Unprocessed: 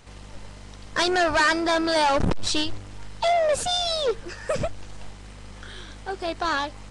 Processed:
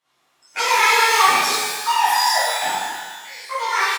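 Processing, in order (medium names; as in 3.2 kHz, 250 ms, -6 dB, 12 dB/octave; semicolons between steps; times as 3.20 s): spectral noise reduction 23 dB; in parallel at -3 dB: saturation -27 dBFS, distortion -10 dB; on the sum: pitch shift -4 st; cabinet simulation 240–8400 Hz, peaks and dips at 310 Hz -4 dB, 610 Hz +7 dB, 1.1 kHz +4 dB, 1.9 kHz +5 dB, 5.1 kHz -3 dB; speed mistake 45 rpm record played at 78 rpm; pitch-shifted reverb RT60 1.4 s, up +12 st, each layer -8 dB, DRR -11.5 dB; trim -10 dB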